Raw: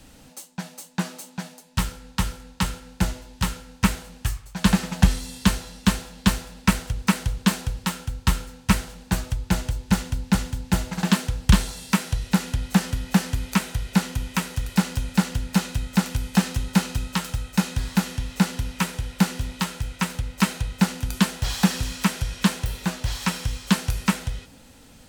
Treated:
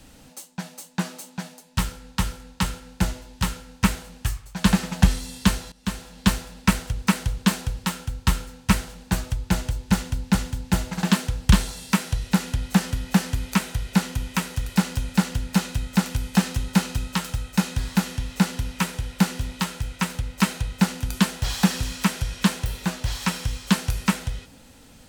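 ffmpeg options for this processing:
ffmpeg -i in.wav -filter_complex "[0:a]asplit=2[link_01][link_02];[link_01]atrim=end=5.72,asetpts=PTS-STARTPTS,afade=type=out:start_time=5.716:duration=0.004:curve=hsin:silence=0.141254[link_03];[link_02]atrim=start=5.72,asetpts=PTS-STARTPTS,afade=type=in:duration=0.55:silence=0.141254[link_04];[link_03][link_04]concat=n=2:v=0:a=1" out.wav

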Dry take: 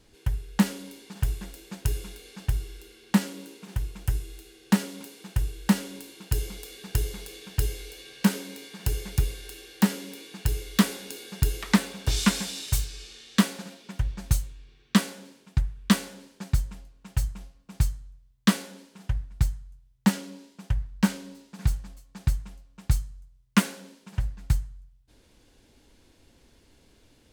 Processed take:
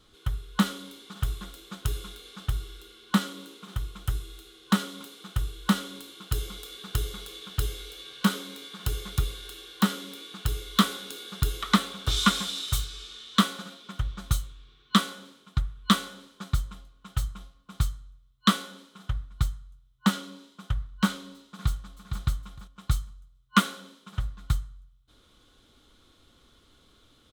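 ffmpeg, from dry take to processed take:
ffmpeg -i in.wav -filter_complex "[0:a]asplit=2[link_01][link_02];[link_02]afade=type=in:start_time=21.47:duration=0.01,afade=type=out:start_time=22.21:duration=0.01,aecho=0:1:460|920|1380:0.446684|0.0893367|0.0178673[link_03];[link_01][link_03]amix=inputs=2:normalize=0,superequalizer=10b=3.55:13b=2.82,volume=-2.5dB" out.wav

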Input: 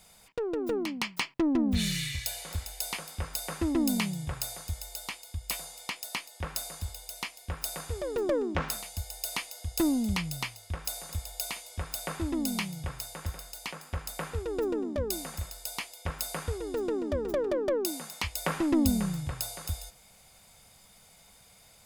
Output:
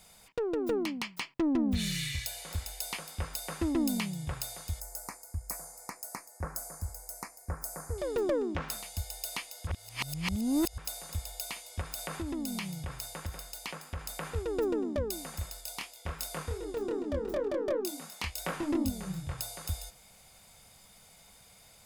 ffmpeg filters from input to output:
ffmpeg -i in.wav -filter_complex "[0:a]asettb=1/sr,asplit=3[link_01][link_02][link_03];[link_01]atrim=end=4.804[link_04];[link_02]atrim=start=4.8:end=7.98,asetpts=PTS-STARTPTS,afade=type=in:duration=0.004:curve=qsin,afade=type=out:start_time=3.176:duration=0.004:curve=qsin,asuperstop=centerf=3200:order=4:qfactor=0.74[link_05];[link_03]atrim=start=7.976[link_06];[link_04][link_05]acrossfade=duration=0.004:curve1=hsin:curve2=qsin[link_07];[link_07][link_06]acrossfade=duration=0.004:curve1=qsin:curve2=hsin,asettb=1/sr,asplit=3[link_08][link_09][link_10];[link_08]atrim=end=11.814[link_11];[link_09]atrim=start=11.81:end=14.36,asetpts=PTS-STARTPTS,afade=type=in:duration=0.004:curve=qsin,afade=type=out:start_time=2.546:duration=0.004:curve=qsin,acompressor=threshold=-33dB:ratio=3:attack=3.2:release=140:knee=1:detection=peak[link_12];[link_10]atrim=start=14.356[link_13];[link_11][link_12]acrossfade=duration=0.004:curve1=hsin:curve2=qsin[link_14];[link_14][link_13]acrossfade=duration=0.004:curve1=qsin:curve2=hsin,asplit=3[link_15][link_16][link_17];[link_15]afade=type=out:start_time=15.6:duration=0.02[link_18];[link_16]flanger=delay=22.5:depth=5:speed=2.7,afade=type=in:start_time=15.6:duration=0.02,afade=type=out:start_time=19.37:duration=0.02[link_19];[link_17]afade=type=in:start_time=19.37:duration=0.02[link_20];[link_18][link_19][link_20]amix=inputs=3:normalize=0,asplit=3[link_21][link_22][link_23];[link_21]atrim=end=9.672[link_24];[link_22]atrim=start=9.668:end=10.782,asetpts=PTS-STARTPTS,areverse[link_25];[link_23]atrim=start=10.778[link_26];[link_24][link_25]acrossfade=duration=0.004:curve1=hsin:curve2=hsin[link_27];[link_27][link_26]acrossfade=duration=0.004:curve1=hsin:curve2=hsin,alimiter=limit=-20.5dB:level=0:latency=1:release=432" out.wav

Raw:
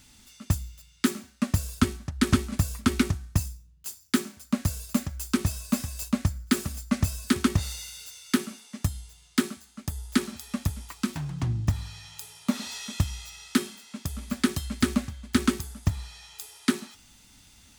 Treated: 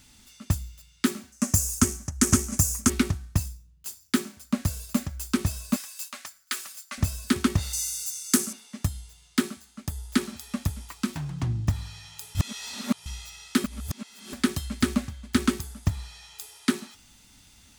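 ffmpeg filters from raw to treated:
ffmpeg -i in.wav -filter_complex "[0:a]asettb=1/sr,asplit=3[link_01][link_02][link_03];[link_01]atrim=end=1.324[link_04];[link_02]atrim=start=1.32:end=2.9,asetpts=PTS-STARTPTS,afade=type=in:duration=0.004:curve=qsin,afade=type=out:start_time=1.576:duration=0.004:curve=qsin,highshelf=frequency=5000:width_type=q:width=3:gain=9[link_05];[link_03]atrim=start=2.896[link_06];[link_04][link_05]acrossfade=duration=0.004:curve1=hsin:curve2=qsin[link_07];[link_07][link_06]acrossfade=duration=0.004:curve1=qsin:curve2=hsin,asettb=1/sr,asplit=3[link_08][link_09][link_10];[link_08]atrim=end=5.764[link_11];[link_09]atrim=start=5.76:end=6.98,asetpts=PTS-STARTPTS,afade=type=in:duration=0.004:curve=qsin,afade=type=out:start_time=1.216:duration=0.004:curve=qsin,highpass=1200[link_12];[link_10]atrim=start=6.976[link_13];[link_11][link_12]acrossfade=duration=0.004:curve1=hsin:curve2=qsin[link_14];[link_14][link_13]acrossfade=duration=0.004:curve1=qsin:curve2=hsin,asettb=1/sr,asplit=3[link_15][link_16][link_17];[link_15]atrim=end=7.734[link_18];[link_16]atrim=start=7.73:end=8.53,asetpts=PTS-STARTPTS,afade=type=in:duration=0.004:curve=qsin,afade=type=out:start_time=0.796:duration=0.004:curve=qsin,highshelf=frequency=4800:width_type=q:width=1.5:gain=11[link_19];[link_17]atrim=start=8.526[link_20];[link_18][link_19]acrossfade=duration=0.004:curve1=hsin:curve2=qsin[link_21];[link_21][link_20]acrossfade=duration=0.004:curve1=qsin:curve2=hsin,asplit=5[link_22][link_23][link_24][link_25][link_26];[link_22]atrim=end=12.352[link_27];[link_23]atrim=start=12.348:end=13.062,asetpts=PTS-STARTPTS,areverse[link_28];[link_24]atrim=start=13.058:end=13.642[link_29];[link_25]atrim=start=13.638:end=14.332,asetpts=PTS-STARTPTS,areverse[link_30];[link_26]atrim=start=14.328[link_31];[link_27][link_28]acrossfade=duration=0.004:curve1=hsin:curve2=hsin[link_32];[link_32][link_29]acrossfade=duration=0.004:curve1=hsin:curve2=hsin[link_33];[link_33][link_30]acrossfade=duration=0.004:curve1=hsin:curve2=hsin[link_34];[link_34][link_31]acrossfade=duration=0.004:curve1=hsin:curve2=hsin" out.wav

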